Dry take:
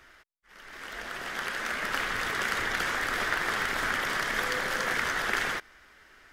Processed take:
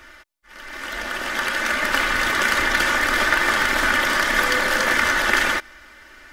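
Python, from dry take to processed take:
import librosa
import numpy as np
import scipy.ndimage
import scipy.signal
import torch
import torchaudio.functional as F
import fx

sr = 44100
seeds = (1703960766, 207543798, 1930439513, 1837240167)

y = x + 0.55 * np.pad(x, (int(3.4 * sr / 1000.0), 0))[:len(x)]
y = F.gain(torch.from_numpy(y), 9.0).numpy()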